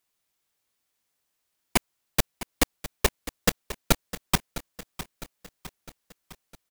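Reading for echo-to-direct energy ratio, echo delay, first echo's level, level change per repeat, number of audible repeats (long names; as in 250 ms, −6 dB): −12.5 dB, 657 ms, −14.0 dB, −5.5 dB, 4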